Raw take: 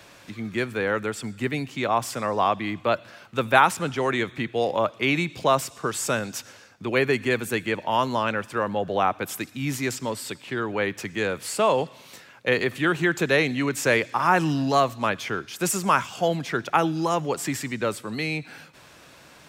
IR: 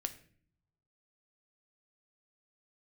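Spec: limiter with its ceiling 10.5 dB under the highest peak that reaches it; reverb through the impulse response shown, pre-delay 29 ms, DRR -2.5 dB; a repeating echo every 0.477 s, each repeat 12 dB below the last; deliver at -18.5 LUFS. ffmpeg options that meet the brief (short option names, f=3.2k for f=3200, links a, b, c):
-filter_complex "[0:a]alimiter=limit=-14dB:level=0:latency=1,aecho=1:1:477|954|1431:0.251|0.0628|0.0157,asplit=2[a][b];[1:a]atrim=start_sample=2205,adelay=29[c];[b][c]afir=irnorm=-1:irlink=0,volume=3dB[d];[a][d]amix=inputs=2:normalize=0,volume=3.5dB"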